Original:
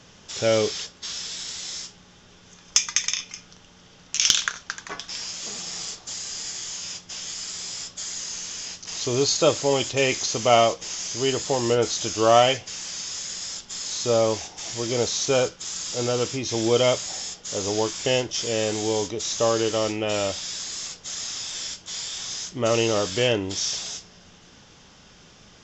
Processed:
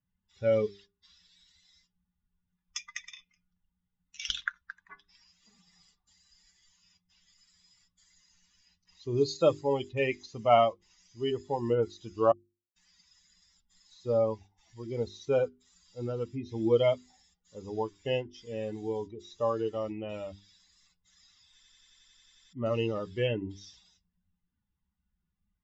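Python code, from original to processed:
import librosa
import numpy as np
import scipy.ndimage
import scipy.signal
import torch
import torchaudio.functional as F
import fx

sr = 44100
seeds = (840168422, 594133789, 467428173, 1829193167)

y = fx.high_shelf(x, sr, hz=4700.0, db=5.0, at=(9.17, 9.61))
y = fx.edit(y, sr, fx.silence(start_s=12.32, length_s=0.44),
    fx.stutter_over(start_s=21.54, slice_s=0.09, count=11), tone=tone)
y = fx.bin_expand(y, sr, power=2.0)
y = scipy.signal.sosfilt(scipy.signal.bessel(2, 1900.0, 'lowpass', norm='mag', fs=sr, output='sos'), y)
y = fx.hum_notches(y, sr, base_hz=50, count=8)
y = y * librosa.db_to_amplitude(-1.0)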